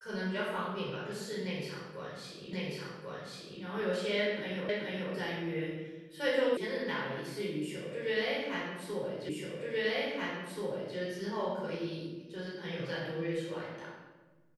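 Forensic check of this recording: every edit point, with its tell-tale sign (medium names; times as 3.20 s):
2.53 s: repeat of the last 1.09 s
4.69 s: repeat of the last 0.43 s
6.57 s: sound stops dead
9.29 s: repeat of the last 1.68 s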